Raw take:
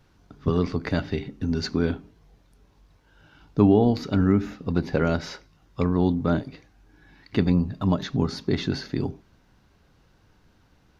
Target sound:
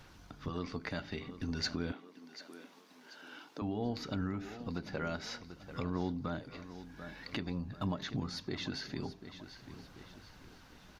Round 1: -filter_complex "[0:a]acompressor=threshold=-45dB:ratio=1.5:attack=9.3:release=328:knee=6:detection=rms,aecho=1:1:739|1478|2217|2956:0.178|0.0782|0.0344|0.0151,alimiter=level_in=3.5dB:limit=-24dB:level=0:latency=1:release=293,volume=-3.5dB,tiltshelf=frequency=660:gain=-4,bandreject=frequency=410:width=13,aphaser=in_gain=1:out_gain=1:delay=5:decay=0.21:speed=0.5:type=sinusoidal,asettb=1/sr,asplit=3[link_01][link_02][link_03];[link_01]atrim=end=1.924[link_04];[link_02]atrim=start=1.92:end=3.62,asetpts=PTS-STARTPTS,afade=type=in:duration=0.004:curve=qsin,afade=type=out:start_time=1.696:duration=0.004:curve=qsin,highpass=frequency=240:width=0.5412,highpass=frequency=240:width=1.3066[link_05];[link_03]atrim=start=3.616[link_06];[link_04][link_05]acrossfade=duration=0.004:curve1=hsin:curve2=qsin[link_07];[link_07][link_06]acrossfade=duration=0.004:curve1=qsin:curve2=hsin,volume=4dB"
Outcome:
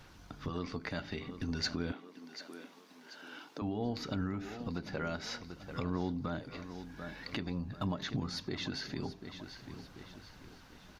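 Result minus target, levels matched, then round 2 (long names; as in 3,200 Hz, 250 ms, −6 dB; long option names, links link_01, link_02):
downward compressor: peak gain reduction −3 dB
-filter_complex "[0:a]acompressor=threshold=-54dB:ratio=1.5:attack=9.3:release=328:knee=6:detection=rms,aecho=1:1:739|1478|2217|2956:0.178|0.0782|0.0344|0.0151,alimiter=level_in=3.5dB:limit=-24dB:level=0:latency=1:release=293,volume=-3.5dB,tiltshelf=frequency=660:gain=-4,bandreject=frequency=410:width=13,aphaser=in_gain=1:out_gain=1:delay=5:decay=0.21:speed=0.5:type=sinusoidal,asettb=1/sr,asplit=3[link_01][link_02][link_03];[link_01]atrim=end=1.924[link_04];[link_02]atrim=start=1.92:end=3.62,asetpts=PTS-STARTPTS,afade=type=in:duration=0.004:curve=qsin,afade=type=out:start_time=1.696:duration=0.004:curve=qsin,highpass=frequency=240:width=0.5412,highpass=frequency=240:width=1.3066[link_05];[link_03]atrim=start=3.616[link_06];[link_04][link_05]acrossfade=duration=0.004:curve1=hsin:curve2=qsin[link_07];[link_07][link_06]acrossfade=duration=0.004:curve1=qsin:curve2=hsin,volume=4dB"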